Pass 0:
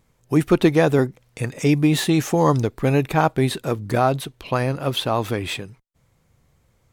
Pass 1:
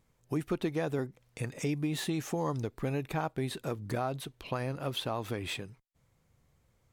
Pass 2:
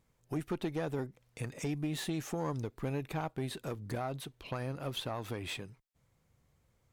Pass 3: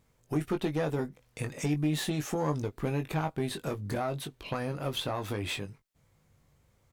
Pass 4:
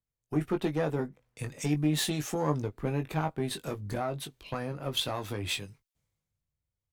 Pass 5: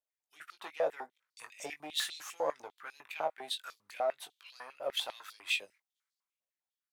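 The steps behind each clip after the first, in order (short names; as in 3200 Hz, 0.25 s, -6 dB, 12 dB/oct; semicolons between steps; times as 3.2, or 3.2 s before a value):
compressor 2.5:1, threshold -24 dBFS, peak gain reduction 9.5 dB; gain -8 dB
one diode to ground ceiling -26.5 dBFS; gain -2 dB
doubler 20 ms -7 dB; gain +4.5 dB
three-band expander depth 70%
stepped high-pass 10 Hz 590–4500 Hz; gain -7 dB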